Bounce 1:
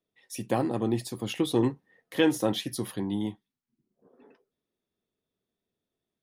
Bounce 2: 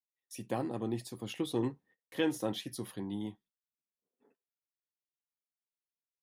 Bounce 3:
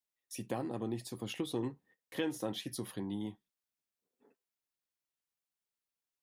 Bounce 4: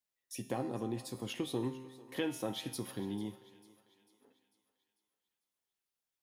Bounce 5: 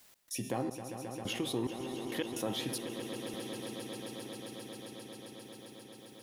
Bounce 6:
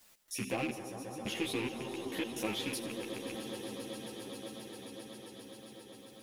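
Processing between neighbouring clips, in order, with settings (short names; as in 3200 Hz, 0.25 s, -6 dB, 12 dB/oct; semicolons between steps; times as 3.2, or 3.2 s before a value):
gate -54 dBFS, range -25 dB; gain -8 dB
compressor 2:1, threshold -38 dBFS, peak gain reduction 7.5 dB; gain +2 dB
resonator 130 Hz, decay 1.1 s, harmonics all, mix 70%; thinning echo 0.446 s, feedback 49%, high-pass 470 Hz, level -18 dB; on a send at -24 dB: reverb RT60 2.7 s, pre-delay 61 ms; on the sum: gain +9.5 dB
step gate "x.xxx....xxx.xx" 108 bpm -60 dB; on a send: swelling echo 0.133 s, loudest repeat 5, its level -17.5 dB; on the sum: fast leveller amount 50%
rattling part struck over -40 dBFS, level -27 dBFS; split-band echo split 2000 Hz, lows 0.194 s, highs 84 ms, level -14.5 dB; ensemble effect; gain +2 dB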